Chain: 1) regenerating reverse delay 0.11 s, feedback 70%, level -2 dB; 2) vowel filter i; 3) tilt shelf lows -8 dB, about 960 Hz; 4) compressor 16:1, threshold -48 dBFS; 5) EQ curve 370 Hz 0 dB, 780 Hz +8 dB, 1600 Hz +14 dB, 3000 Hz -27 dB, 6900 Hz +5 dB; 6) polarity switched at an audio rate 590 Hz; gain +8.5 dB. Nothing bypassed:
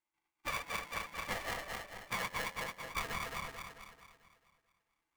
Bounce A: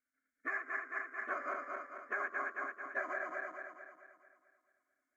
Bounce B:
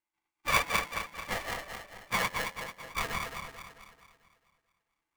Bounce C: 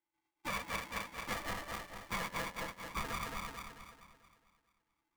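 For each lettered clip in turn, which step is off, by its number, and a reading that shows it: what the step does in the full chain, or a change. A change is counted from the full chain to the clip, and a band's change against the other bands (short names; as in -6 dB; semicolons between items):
6, 250 Hz band -4.5 dB; 4, mean gain reduction 3.0 dB; 3, 250 Hz band +5.0 dB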